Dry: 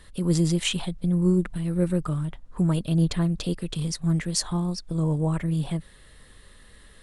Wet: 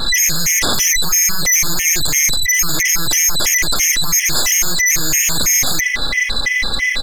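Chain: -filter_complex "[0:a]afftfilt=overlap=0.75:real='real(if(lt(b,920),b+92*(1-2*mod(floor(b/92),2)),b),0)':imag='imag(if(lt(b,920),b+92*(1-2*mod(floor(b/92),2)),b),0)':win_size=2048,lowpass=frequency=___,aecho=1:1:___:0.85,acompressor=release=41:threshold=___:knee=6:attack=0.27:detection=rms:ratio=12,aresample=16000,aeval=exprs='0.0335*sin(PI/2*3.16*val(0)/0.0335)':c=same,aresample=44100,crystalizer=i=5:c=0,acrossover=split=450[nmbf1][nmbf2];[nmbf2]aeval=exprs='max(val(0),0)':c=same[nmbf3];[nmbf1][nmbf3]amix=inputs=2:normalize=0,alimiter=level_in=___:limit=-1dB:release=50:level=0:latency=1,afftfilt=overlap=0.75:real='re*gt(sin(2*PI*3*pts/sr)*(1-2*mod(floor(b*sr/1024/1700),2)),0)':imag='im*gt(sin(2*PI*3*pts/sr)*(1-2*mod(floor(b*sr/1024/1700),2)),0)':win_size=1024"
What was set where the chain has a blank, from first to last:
2100, 3.6, -32dB, 20.5dB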